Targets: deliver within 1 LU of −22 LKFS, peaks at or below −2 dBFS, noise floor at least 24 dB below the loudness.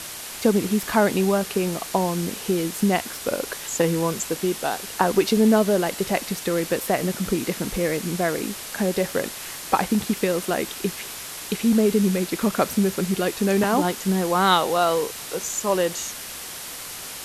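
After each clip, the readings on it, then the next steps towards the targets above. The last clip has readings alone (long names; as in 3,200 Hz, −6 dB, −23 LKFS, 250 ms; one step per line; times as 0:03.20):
background noise floor −36 dBFS; target noise floor −47 dBFS; integrated loudness −23.0 LKFS; sample peak −4.0 dBFS; target loudness −22.0 LKFS
→ broadband denoise 11 dB, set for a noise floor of −36 dBFS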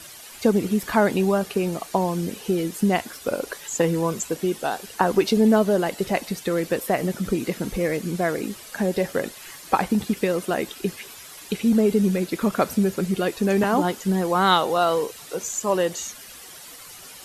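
background noise floor −43 dBFS; target noise floor −48 dBFS
→ broadband denoise 6 dB, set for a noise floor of −43 dBFS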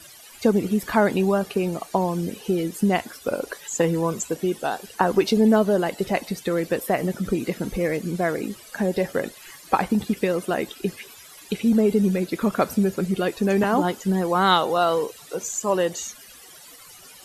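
background noise floor −46 dBFS; target noise floor −48 dBFS
→ broadband denoise 6 dB, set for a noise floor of −46 dBFS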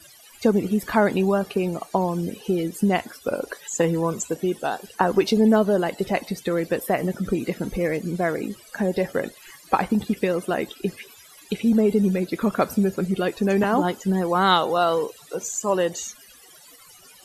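background noise floor −49 dBFS; integrated loudness −23.5 LKFS; sample peak −4.0 dBFS; target loudness −22.0 LKFS
→ level +1.5 dB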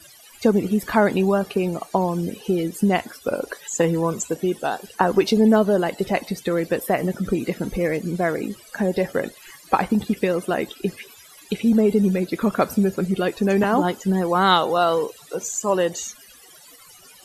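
integrated loudness −22.0 LKFS; sample peak −2.5 dBFS; background noise floor −48 dBFS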